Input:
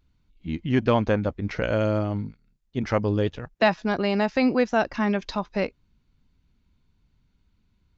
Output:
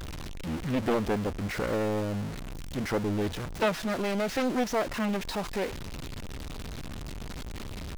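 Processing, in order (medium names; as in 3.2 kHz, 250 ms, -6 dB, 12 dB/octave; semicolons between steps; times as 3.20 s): jump at every zero crossing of -23.5 dBFS; loudspeaker Doppler distortion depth 0.85 ms; trim -8 dB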